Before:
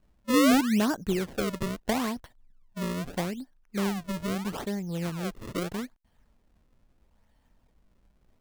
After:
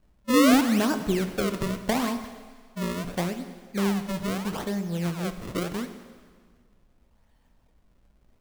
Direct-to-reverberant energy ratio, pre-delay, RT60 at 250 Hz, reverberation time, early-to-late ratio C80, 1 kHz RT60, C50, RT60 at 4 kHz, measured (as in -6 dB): 8.5 dB, 7 ms, 1.7 s, 1.7 s, 11.5 dB, 1.7 s, 10.0 dB, 1.6 s